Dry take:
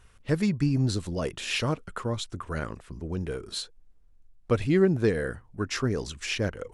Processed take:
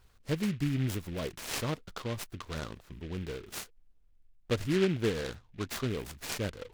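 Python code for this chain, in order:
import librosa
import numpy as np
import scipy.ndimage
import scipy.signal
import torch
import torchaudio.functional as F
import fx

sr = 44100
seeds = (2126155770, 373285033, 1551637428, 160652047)

y = fx.noise_mod_delay(x, sr, seeds[0], noise_hz=2200.0, depth_ms=0.095)
y = F.gain(torch.from_numpy(y), -6.0).numpy()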